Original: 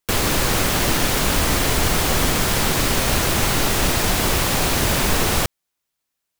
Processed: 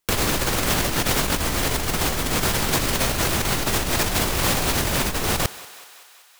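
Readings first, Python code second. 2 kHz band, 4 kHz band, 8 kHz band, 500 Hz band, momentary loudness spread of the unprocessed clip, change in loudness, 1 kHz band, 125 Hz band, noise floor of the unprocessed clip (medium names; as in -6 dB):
-3.0 dB, -3.0 dB, -3.0 dB, -3.0 dB, 0 LU, -3.0 dB, -3.0 dB, -3.5 dB, -80 dBFS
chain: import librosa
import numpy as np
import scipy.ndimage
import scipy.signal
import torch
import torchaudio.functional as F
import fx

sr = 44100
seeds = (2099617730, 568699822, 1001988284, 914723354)

y = fx.echo_thinned(x, sr, ms=190, feedback_pct=68, hz=490.0, wet_db=-22.5)
y = fx.over_compress(y, sr, threshold_db=-21.0, ratio=-0.5)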